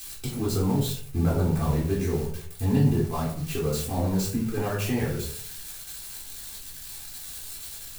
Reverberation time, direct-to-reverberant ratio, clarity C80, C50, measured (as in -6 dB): 0.55 s, -8.0 dB, 9.5 dB, 5.0 dB